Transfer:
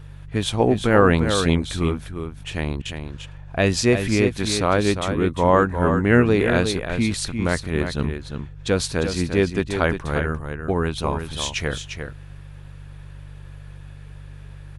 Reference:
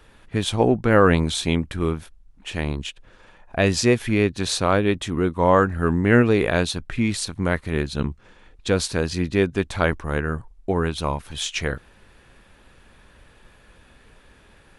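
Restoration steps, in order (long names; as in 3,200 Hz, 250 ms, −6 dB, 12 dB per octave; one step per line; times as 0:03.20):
hum removal 48.6 Hz, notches 3
repair the gap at 0:02.82, 32 ms
echo removal 350 ms −7.5 dB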